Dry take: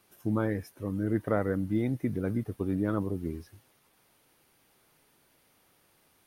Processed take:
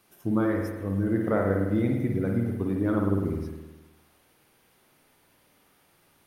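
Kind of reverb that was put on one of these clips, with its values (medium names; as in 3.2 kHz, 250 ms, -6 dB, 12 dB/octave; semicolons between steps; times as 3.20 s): spring tank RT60 1.2 s, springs 51 ms, chirp 65 ms, DRR 1 dB; trim +1.5 dB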